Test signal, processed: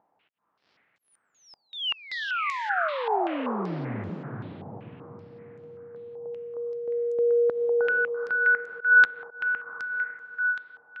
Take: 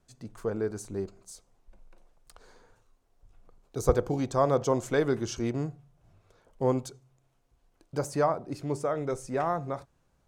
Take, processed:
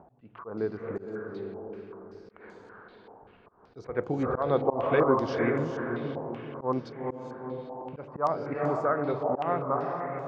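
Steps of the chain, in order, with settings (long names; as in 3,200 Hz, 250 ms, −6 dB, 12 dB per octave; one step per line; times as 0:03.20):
in parallel at −2 dB: upward compression, threshold −32 dBFS
on the sum: Bessel high-pass filter 160 Hz, order 2
on a send: feedback delay with all-pass diffusion 457 ms, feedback 50%, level −4 dB
on the sum: volume swells 161 ms
high-frequency loss of the air 400 metres
low-pass on a step sequencer 5.2 Hz 830–7,000 Hz
level −3.5 dB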